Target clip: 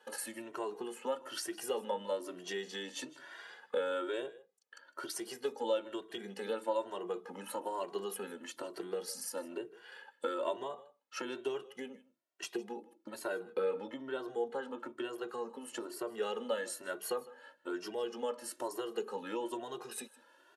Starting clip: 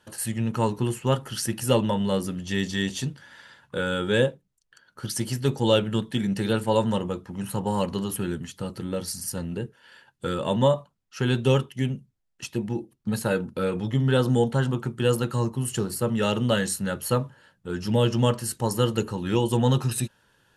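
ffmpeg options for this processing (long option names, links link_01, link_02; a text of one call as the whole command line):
ffmpeg -i in.wav -filter_complex "[0:a]asettb=1/sr,asplit=3[link_01][link_02][link_03];[link_01]atrim=end=13.434[link_04];[link_02]atrim=start=13.43:end=16.1,asetpts=PTS-STARTPTS,afade=type=in:duration=0.004:curve=qsin,afade=type=out:start_time=2.666:duration=0.004:curve=qsin,highshelf=frequency=5100:gain=-7[link_05];[link_03]atrim=start=16.096[link_06];[link_04][link_05]acrossfade=duration=0.004:curve1=hsin:curve2=qsin[link_07];[link_07][link_06]acrossfade=duration=0.004:curve1=qsin:curve2=hsin,acompressor=threshold=-33dB:ratio=6,highpass=frequency=350:width=0.5412,highpass=frequency=350:width=1.3066,highshelf=frequency=2200:gain=-9,aecho=1:1:157:0.0944,asplit=2[link_08][link_09];[link_09]adelay=2,afreqshift=1.1[link_10];[link_08][link_10]amix=inputs=2:normalize=1,volume=6.5dB" out.wav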